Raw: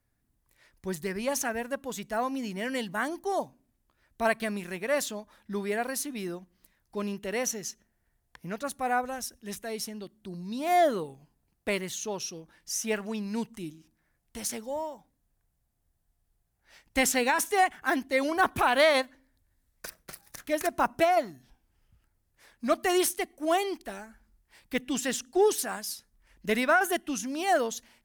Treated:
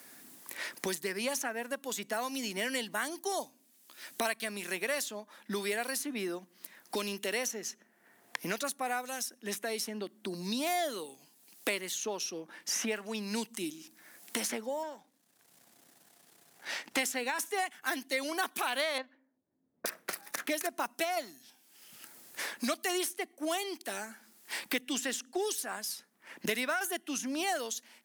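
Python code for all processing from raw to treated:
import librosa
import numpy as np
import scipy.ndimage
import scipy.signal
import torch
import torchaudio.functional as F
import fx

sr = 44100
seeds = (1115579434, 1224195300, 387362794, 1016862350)

y = fx.chain(x, sr, fx.halfwave_gain(db=-7.0),
    fx.high_shelf(hz=8300.0, db=-10.5), at=(14.83, 16.99))
y = fx.chain(y, sr, fx.env_lowpass(base_hz=350.0, full_db=-28.5),
    fx.air_absorb(metres=240.0), at=(18.98, 19.86))
y = scipy.signal.sosfilt(scipy.signal.butter(4, 220.0, 'highpass', fs=sr, output='sos'), y)
y = fx.high_shelf(y, sr, hz=2100.0, db=8.5)
y = fx.band_squash(y, sr, depth_pct=100)
y = y * librosa.db_to_amplitude(-7.5)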